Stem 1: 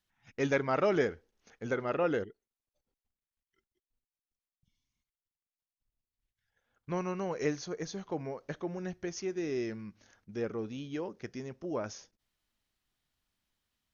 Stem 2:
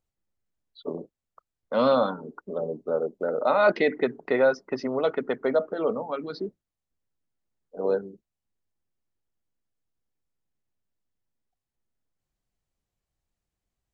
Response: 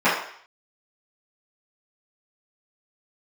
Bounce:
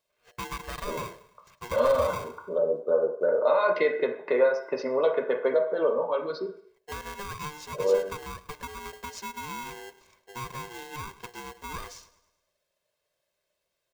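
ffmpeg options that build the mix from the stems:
-filter_complex "[0:a]bandreject=f=60:t=h:w=6,bandreject=f=120:t=h:w=6,bandreject=f=180:t=h:w=6,bandreject=f=240:t=h:w=6,bandreject=f=300:t=h:w=6,acompressor=threshold=0.0178:ratio=6,aeval=exprs='val(0)*sgn(sin(2*PI*600*n/s))':c=same,volume=1,asplit=3[s0][s1][s2];[s1]volume=0.119[s3];[1:a]highpass=200,acompressor=threshold=0.0794:ratio=6,volume=0.794,asplit=2[s4][s5];[s5]volume=0.0794[s6];[s2]apad=whole_len=614636[s7];[s4][s7]sidechaincompress=threshold=0.00891:ratio=8:attack=16:release=169[s8];[2:a]atrim=start_sample=2205[s9];[s6][s9]afir=irnorm=-1:irlink=0[s10];[s3]aecho=0:1:105|210|315|420|525|630|735:1|0.5|0.25|0.125|0.0625|0.0312|0.0156[s11];[s0][s8][s10][s11]amix=inputs=4:normalize=0,aecho=1:1:1.9:0.58"

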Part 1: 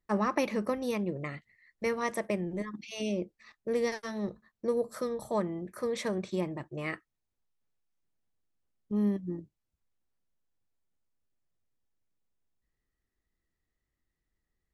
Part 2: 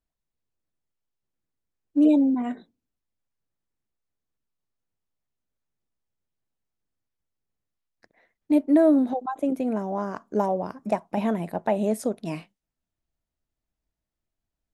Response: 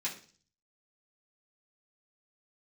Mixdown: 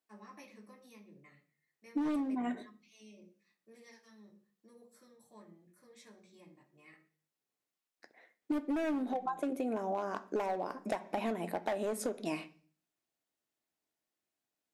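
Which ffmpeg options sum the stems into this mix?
-filter_complex "[0:a]aemphasis=mode=production:type=cd,volume=0.133,asplit=2[s0][s1];[s1]volume=0.335[s2];[1:a]highpass=270,asoftclip=type=hard:threshold=0.0891,volume=0.944,asplit=3[s3][s4][s5];[s4]volume=0.316[s6];[s5]apad=whole_len=650001[s7];[s0][s7]sidechaingate=range=0.112:threshold=0.00224:ratio=16:detection=peak[s8];[2:a]atrim=start_sample=2205[s9];[s2][s6]amix=inputs=2:normalize=0[s10];[s10][s9]afir=irnorm=-1:irlink=0[s11];[s8][s3][s11]amix=inputs=3:normalize=0,acompressor=threshold=0.0282:ratio=12"

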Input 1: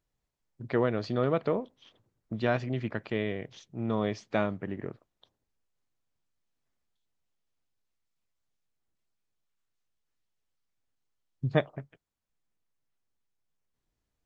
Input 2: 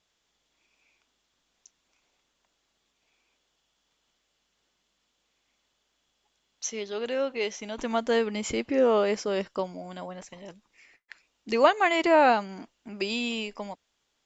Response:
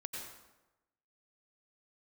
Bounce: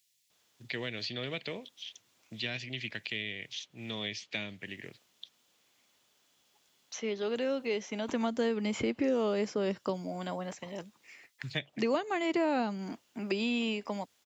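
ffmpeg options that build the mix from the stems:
-filter_complex "[0:a]aexciter=amount=15.6:drive=7:freq=2000,volume=0.282[s0];[1:a]adelay=300,volume=1.41[s1];[s0][s1]amix=inputs=2:normalize=0,highpass=f=83:w=0.5412,highpass=f=83:w=1.3066,acrossover=split=330|3500[s2][s3][s4];[s2]acompressor=threshold=0.0282:ratio=4[s5];[s3]acompressor=threshold=0.0178:ratio=4[s6];[s4]acompressor=threshold=0.00316:ratio=4[s7];[s5][s6][s7]amix=inputs=3:normalize=0"

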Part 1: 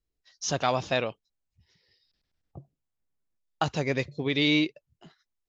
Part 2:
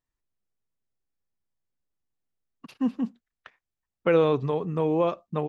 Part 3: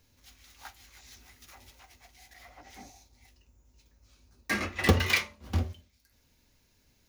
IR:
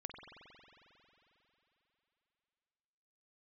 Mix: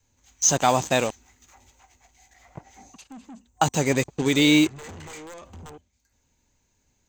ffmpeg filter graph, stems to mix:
-filter_complex "[0:a]acrusher=bits=5:mix=0:aa=0.5,volume=0.841[s0];[1:a]highshelf=f=2500:g=11.5,acompressor=threshold=0.0631:ratio=16,aeval=exprs='(mod(10*val(0)+1,2)-1)/10':c=same,adelay=300,volume=0.501[s1];[2:a]highshelf=f=4700:g=-9,volume=0.422[s2];[s1][s2]amix=inputs=2:normalize=0,asoftclip=type=tanh:threshold=0.0112,alimiter=level_in=11.2:limit=0.0631:level=0:latency=1:release=234,volume=0.0891,volume=1[s3];[s0][s3]amix=inputs=2:normalize=0,adynamicequalizer=threshold=0.00891:dfrequency=260:dqfactor=1.5:tfrequency=260:tqfactor=1.5:attack=5:release=100:ratio=0.375:range=2:mode=boostabove:tftype=bell,acontrast=39,superequalizer=9b=1.58:15b=3.98:16b=0.447"

